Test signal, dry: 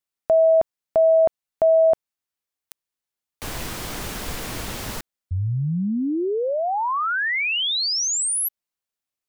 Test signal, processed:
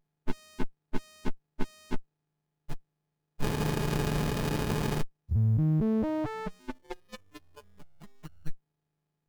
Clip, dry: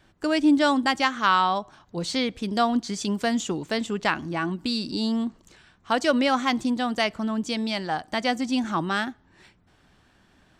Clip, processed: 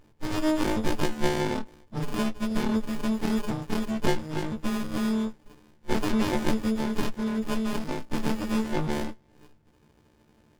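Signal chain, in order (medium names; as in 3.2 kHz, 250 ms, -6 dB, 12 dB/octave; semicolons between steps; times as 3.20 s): partials quantised in pitch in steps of 6 st; sliding maximum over 65 samples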